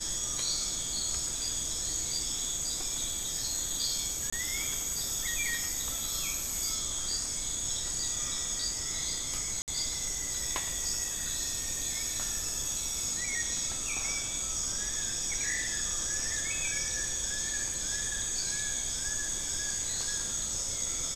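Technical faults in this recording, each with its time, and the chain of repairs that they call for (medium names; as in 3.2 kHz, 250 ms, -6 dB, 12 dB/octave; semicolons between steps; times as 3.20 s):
4.30–4.33 s: dropout 25 ms
9.62–9.68 s: dropout 58 ms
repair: interpolate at 4.30 s, 25 ms; interpolate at 9.62 s, 58 ms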